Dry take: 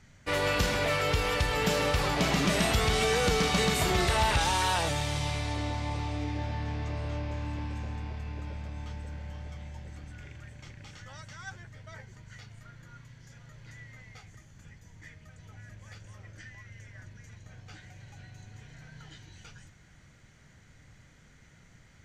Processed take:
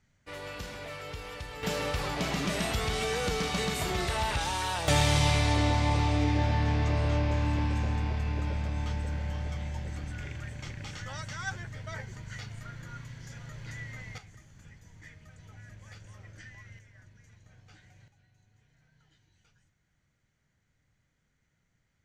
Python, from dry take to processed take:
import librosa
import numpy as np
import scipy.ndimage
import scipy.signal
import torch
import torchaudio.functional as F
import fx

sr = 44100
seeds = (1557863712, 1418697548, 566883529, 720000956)

y = fx.gain(x, sr, db=fx.steps((0.0, -13.0), (1.63, -4.5), (4.88, 7.0), (14.18, -1.0), (16.79, -8.0), (18.08, -18.0)))